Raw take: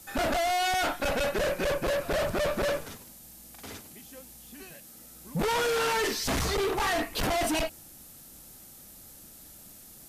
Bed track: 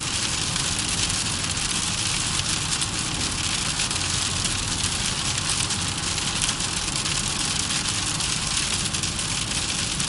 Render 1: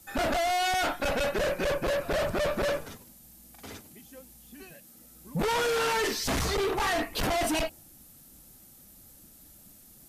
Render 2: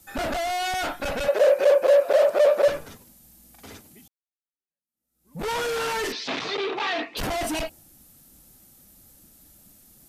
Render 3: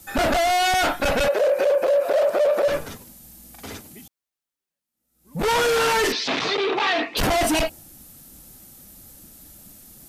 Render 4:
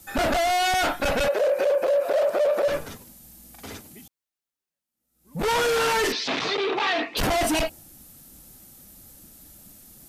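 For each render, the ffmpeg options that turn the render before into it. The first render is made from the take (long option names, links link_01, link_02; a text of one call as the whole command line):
ffmpeg -i in.wav -af "afftdn=noise_reduction=6:noise_floor=-50" out.wav
ffmpeg -i in.wav -filter_complex "[0:a]asettb=1/sr,asplit=3[link_01][link_02][link_03];[link_01]atrim=end=1.284[link_04];[link_02]atrim=start=1.28:end=2.68,asetpts=PTS-STARTPTS,afade=type=in:duration=0.004:curve=qsin,afade=type=out:start_time=1.396:duration=0.004:curve=qsin,highpass=frequency=540:width_type=q:width=4.9[link_05];[link_03]atrim=start=2.676[link_06];[link_04][link_05]acrossfade=duration=0.004:curve1=hsin:curve2=qsin[link_07];[link_07][link_06]acrossfade=duration=0.004:curve1=qsin:curve2=hsin,asettb=1/sr,asplit=3[link_08][link_09][link_10];[link_08]atrim=end=6.124[link_11];[link_09]atrim=start=6.12:end=7.17,asetpts=PTS-STARTPTS,afade=type=in:duration=0.004:curve=qsin,afade=type=out:start_time=1.046:duration=0.004:curve=qsin,highpass=frequency=180:width=0.5412,highpass=frequency=180:width=1.3066,equalizer=frequency=190:width_type=q:width=4:gain=-9,equalizer=frequency=2500:width_type=q:width=4:gain=6,equalizer=frequency=3600:width_type=q:width=4:gain=6,lowpass=frequency=5000:width=0.5412,lowpass=frequency=5000:width=1.3066[link_12];[link_10]atrim=start=7.166[link_13];[link_11][link_12]acrossfade=duration=0.004:curve1=hsin:curve2=qsin[link_14];[link_14][link_13]acrossfade=duration=0.004:curve1=qsin:curve2=hsin,asplit=2[link_15][link_16];[link_15]atrim=end=4.08,asetpts=PTS-STARTPTS,afade=type=out:start_time=4.076:duration=0.004:curve=hsin[link_17];[link_16]atrim=start=4.08,asetpts=PTS-STARTPTS,afade=type=in:duration=1.39:curve=exp[link_18];[link_17][link_18]concat=n=2:v=0:a=1" out.wav
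ffmpeg -i in.wav -af "acontrast=89,alimiter=limit=-13.5dB:level=0:latency=1:release=66" out.wav
ffmpeg -i in.wav -af "volume=-2.5dB" out.wav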